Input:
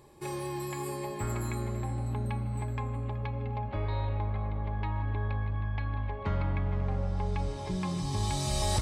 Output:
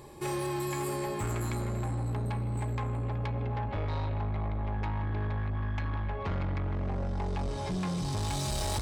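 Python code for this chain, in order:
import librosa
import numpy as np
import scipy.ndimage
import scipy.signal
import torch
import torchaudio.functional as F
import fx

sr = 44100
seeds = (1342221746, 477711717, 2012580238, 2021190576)

p1 = fx.rider(x, sr, range_db=10, speed_s=0.5)
p2 = x + (p1 * librosa.db_to_amplitude(-2.0))
y = 10.0 ** (-28.5 / 20.0) * np.tanh(p2 / 10.0 ** (-28.5 / 20.0))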